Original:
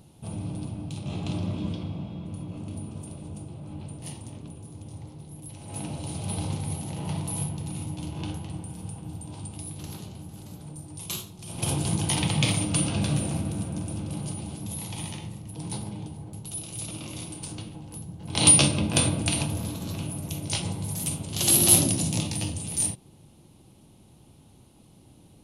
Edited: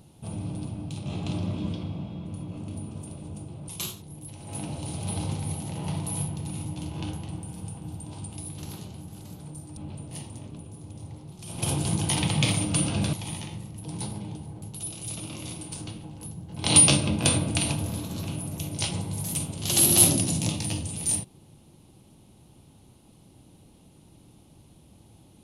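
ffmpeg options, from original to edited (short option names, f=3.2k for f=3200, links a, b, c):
-filter_complex "[0:a]asplit=6[a][b][c][d][e][f];[a]atrim=end=3.682[g];[b]atrim=start=10.978:end=11.322[h];[c]atrim=start=5.228:end=10.982[i];[d]atrim=start=3.678:end=5.232[j];[e]atrim=start=11.318:end=13.132[k];[f]atrim=start=14.838[l];[g][h]acrossfade=d=0.004:c1=hsin:c2=hsin[m];[m][i]acrossfade=d=0.004:c1=hsin:c2=hsin[n];[n][j]acrossfade=d=0.004:c1=hsin:c2=hsin[o];[o][k]acrossfade=d=0.004:c1=hsin:c2=hsin[p];[p][l]acrossfade=d=0.004:c1=hsin:c2=hsin"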